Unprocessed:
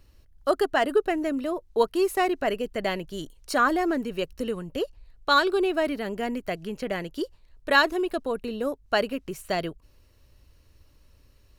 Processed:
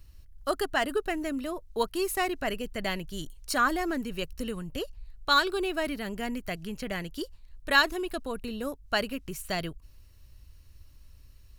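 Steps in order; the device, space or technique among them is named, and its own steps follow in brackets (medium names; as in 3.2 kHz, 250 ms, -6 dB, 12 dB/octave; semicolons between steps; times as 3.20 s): smiley-face EQ (bass shelf 120 Hz +7.5 dB; peaking EQ 470 Hz -7 dB 1.9 oct; treble shelf 6.6 kHz +6 dB); trim -1 dB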